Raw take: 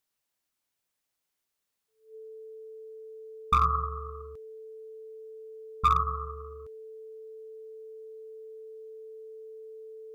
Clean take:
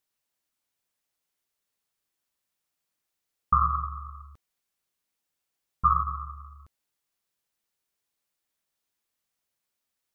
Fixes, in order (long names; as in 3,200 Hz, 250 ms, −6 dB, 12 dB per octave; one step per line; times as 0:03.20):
clipped peaks rebuilt −15.5 dBFS
notch filter 440 Hz, Q 30